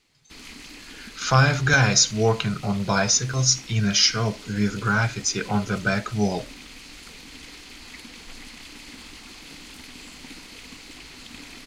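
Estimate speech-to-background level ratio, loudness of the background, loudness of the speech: 19.5 dB, −41.0 LKFS, −21.5 LKFS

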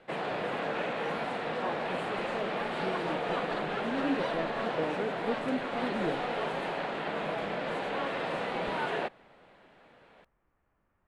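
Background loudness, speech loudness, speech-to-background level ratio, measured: −33.5 LKFS, −38.0 LKFS, −4.5 dB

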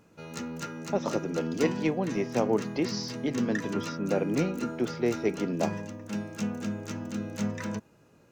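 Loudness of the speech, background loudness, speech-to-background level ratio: −31.0 LKFS, −35.5 LKFS, 4.5 dB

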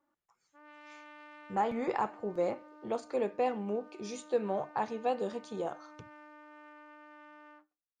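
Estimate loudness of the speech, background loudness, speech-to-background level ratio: −35.0 LKFS, −54.0 LKFS, 19.0 dB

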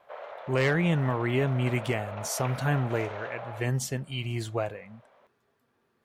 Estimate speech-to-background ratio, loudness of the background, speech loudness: 11.0 dB, −40.0 LKFS, −29.0 LKFS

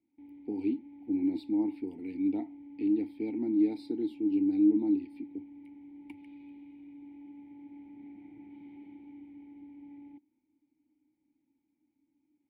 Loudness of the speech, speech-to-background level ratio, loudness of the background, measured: −31.0 LKFS, 19.0 dB, −50.0 LKFS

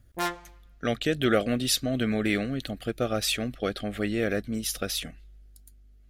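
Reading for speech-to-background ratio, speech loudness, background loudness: 4.0 dB, −28.0 LKFS, −32.0 LKFS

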